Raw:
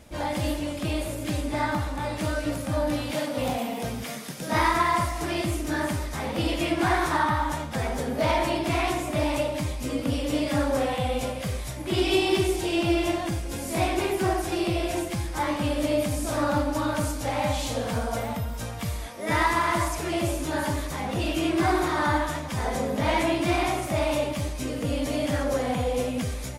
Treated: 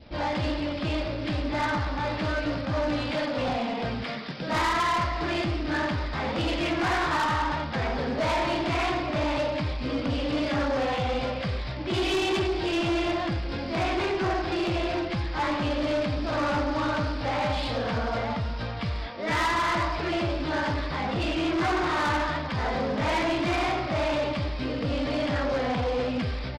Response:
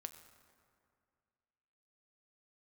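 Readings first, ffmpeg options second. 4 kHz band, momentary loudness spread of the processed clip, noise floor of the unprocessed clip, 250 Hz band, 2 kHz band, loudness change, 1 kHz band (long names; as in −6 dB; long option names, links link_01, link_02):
+0.5 dB, 5 LU, −34 dBFS, −1.5 dB, +1.0 dB, −1.0 dB, −0.5 dB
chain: -af "adynamicequalizer=threshold=0.01:dfrequency=1400:dqfactor=1.1:tfrequency=1400:tqfactor=1.1:attack=5:release=100:ratio=0.375:range=2:mode=boostabove:tftype=bell,aresample=11025,acrusher=bits=3:mode=log:mix=0:aa=0.000001,aresample=44100,asoftclip=type=tanh:threshold=-24dB,volume=2dB"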